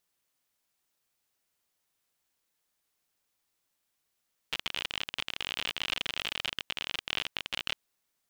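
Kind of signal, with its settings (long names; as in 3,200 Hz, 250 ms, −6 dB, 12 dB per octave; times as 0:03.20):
Geiger counter clicks 54 per second −16 dBFS 3.23 s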